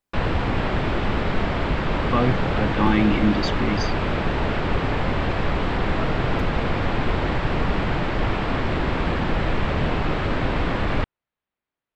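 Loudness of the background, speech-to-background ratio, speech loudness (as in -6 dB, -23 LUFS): -24.5 LUFS, 0.0 dB, -24.5 LUFS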